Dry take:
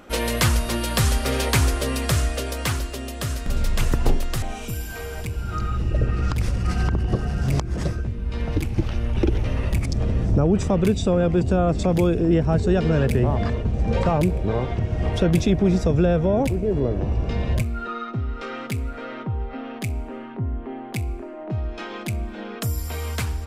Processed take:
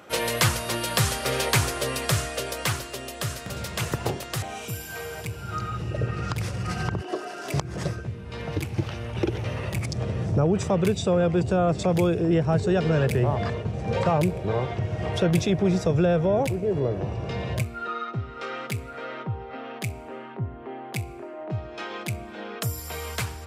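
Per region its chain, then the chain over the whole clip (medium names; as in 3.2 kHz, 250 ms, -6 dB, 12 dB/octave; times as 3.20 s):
7.01–7.54 s: high-pass 290 Hz 24 dB/octave + comb 3 ms, depth 60%
whole clip: high-pass 100 Hz 24 dB/octave; peaking EQ 250 Hz -9.5 dB 0.65 oct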